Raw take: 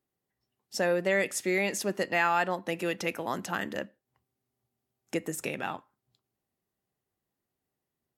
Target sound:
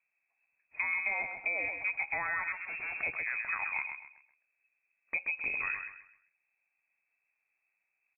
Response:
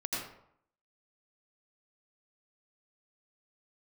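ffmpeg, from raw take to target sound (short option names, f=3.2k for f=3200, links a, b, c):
-filter_complex "[0:a]lowshelf=f=450:g=7.5,asettb=1/sr,asplit=3[a][b][c];[a]atrim=end=2.524[d];[b]atrim=start=2.52:end=2.96,asetpts=PTS-STARTPTS,afade=t=in:d=0.004:c=qsin,afade=t=out:st=0.436:d=0.004:c=qsin,aeval=exprs='(tanh(70.8*val(0)+0.2)-tanh(0.2))/70.8':c=same[e];[c]atrim=start=2.956[f];[d][e]acrossfade=d=0.004:c1=hsin:c2=qsin[g];[g][f]acrossfade=d=0.004:c1=qsin:c2=hsin,asplit=3[h][i][j];[h]afade=t=out:st=5.23:d=0.02[k];[i]asubboost=boost=5.5:cutoff=180,afade=t=in:st=5.23:d=0.02,afade=t=out:st=5.73:d=0.02[l];[j]afade=t=in:st=5.73:d=0.02[m];[k][l][m]amix=inputs=3:normalize=0,acompressor=threshold=-31dB:ratio=6,aecho=1:1:130|260|390|520:0.447|0.138|0.0429|0.0133,lowpass=f=2.3k:t=q:w=0.5098,lowpass=f=2.3k:t=q:w=0.6013,lowpass=f=2.3k:t=q:w=0.9,lowpass=f=2.3k:t=q:w=2.563,afreqshift=-2700"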